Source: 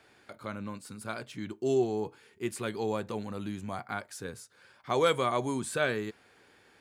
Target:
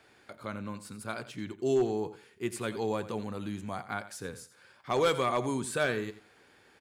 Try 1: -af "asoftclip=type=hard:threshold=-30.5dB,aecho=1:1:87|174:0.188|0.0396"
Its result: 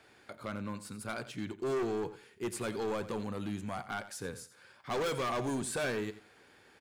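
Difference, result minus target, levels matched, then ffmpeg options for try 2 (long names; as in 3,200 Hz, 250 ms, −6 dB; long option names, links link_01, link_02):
hard clipping: distortion +15 dB
-af "asoftclip=type=hard:threshold=-20dB,aecho=1:1:87|174:0.188|0.0396"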